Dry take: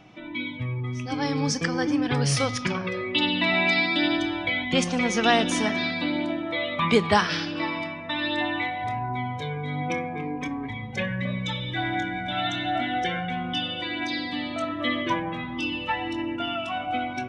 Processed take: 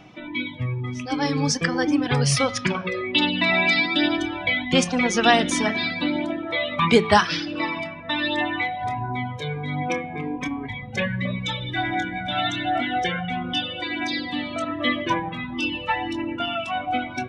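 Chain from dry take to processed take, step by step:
reverb reduction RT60 0.79 s
hum removal 109.4 Hz, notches 39
level +4.5 dB

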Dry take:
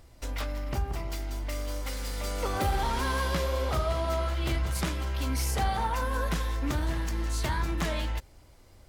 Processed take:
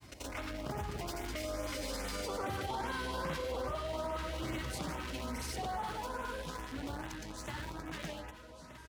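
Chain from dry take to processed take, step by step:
source passing by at 0:02.42, 17 m/s, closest 16 metres
low-shelf EQ 98 Hz −10.5 dB
repeating echo 1,106 ms, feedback 54%, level −20 dB
in parallel at −6 dB: bit reduction 7 bits
on the sum: brickwall limiter −28 dBFS, peak gain reduction 12.5 dB
granular cloud, pitch spread up and down by 0 semitones
on a send at −15 dB: convolution reverb RT60 0.35 s, pre-delay 40 ms
on the sum: auto-filter notch saw up 2.4 Hz 460–5,400 Hz
high-pass filter 65 Hz
high-shelf EQ 6,700 Hz −6.5 dB
envelope flattener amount 50%

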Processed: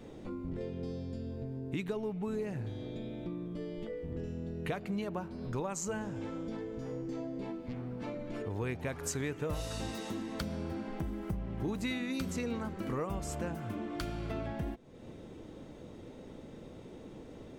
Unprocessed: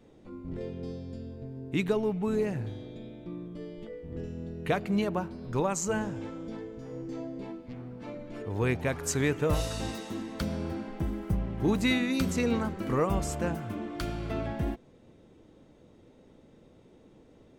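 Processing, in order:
downward compressor 3 to 1, threshold −47 dBFS, peak gain reduction 18.5 dB
level +8 dB

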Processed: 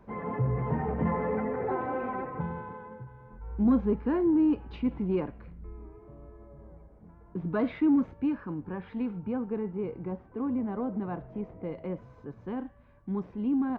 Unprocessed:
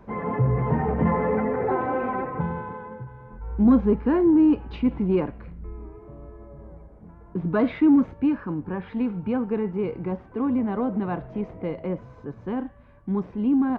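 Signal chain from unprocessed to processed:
0:09.18–0:11.72: high-shelf EQ 2,600 Hz −10 dB
level −6.5 dB

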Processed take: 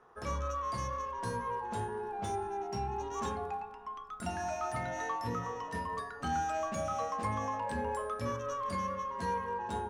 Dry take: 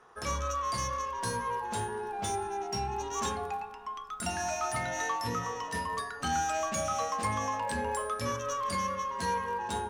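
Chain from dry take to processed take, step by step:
high-shelf EQ 2,100 Hz −11.5 dB
level −1 dB

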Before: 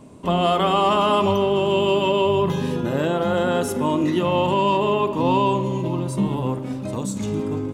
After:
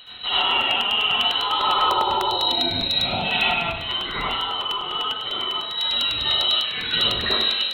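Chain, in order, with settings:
drawn EQ curve 130 Hz 0 dB, 390 Hz −26 dB, 930 Hz +7 dB
reverb reduction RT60 1.8 s
hard clipping −15.5 dBFS, distortion −14 dB
downward compressor, threshold −25 dBFS, peak gain reduction 8 dB
wave folding −22 dBFS
0:01.80–0:03.24: gain on a spectral selection 390–3,000 Hz −13 dB
voice inversion scrambler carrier 4,000 Hz
convolution reverb, pre-delay 65 ms, DRR −9.5 dB
speech leveller 0.5 s
0:03.54–0:05.78: high-shelf EQ 2,300 Hz −9 dB
echo with a time of its own for lows and highs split 1,500 Hz, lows 100 ms, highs 158 ms, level −13 dB
regular buffer underruns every 0.10 s, samples 64, repeat, from 0:00.41

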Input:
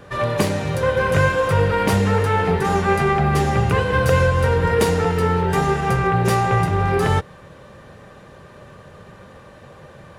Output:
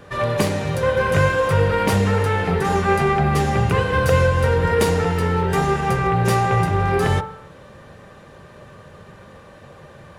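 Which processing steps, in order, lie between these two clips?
hum removal 62.95 Hz, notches 27
on a send: convolution reverb, pre-delay 59 ms, DRR 18 dB

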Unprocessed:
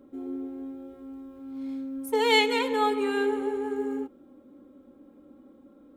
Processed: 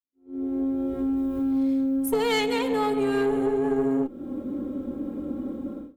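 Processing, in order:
fade in at the beginning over 1.11 s
0:01.17–0:03.46: high-shelf EQ 9,000 Hz +7.5 dB
automatic gain control gain up to 16.5 dB
low-shelf EQ 390 Hz +10.5 dB
tube saturation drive 5 dB, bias 0.45
downward expander −32 dBFS
downward compressor 3 to 1, threshold −25 dBFS, peak gain reduction 12 dB

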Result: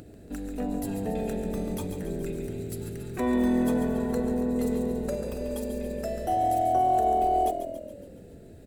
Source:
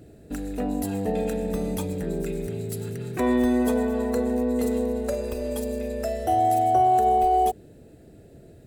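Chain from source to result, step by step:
upward compression, threshold −36 dBFS
echo with shifted repeats 140 ms, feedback 59%, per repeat −42 Hz, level −9 dB
on a send at −19 dB: convolution reverb RT60 0.45 s, pre-delay 3 ms
on the sum: level −5 dB

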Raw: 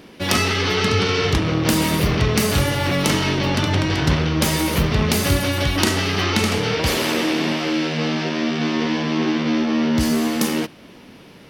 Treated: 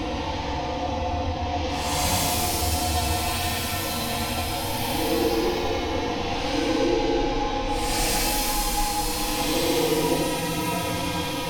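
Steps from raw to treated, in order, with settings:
phaser with its sweep stopped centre 480 Hz, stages 4
ring modulation 400 Hz
extreme stretch with random phases 8.7×, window 0.10 s, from 0:01.45

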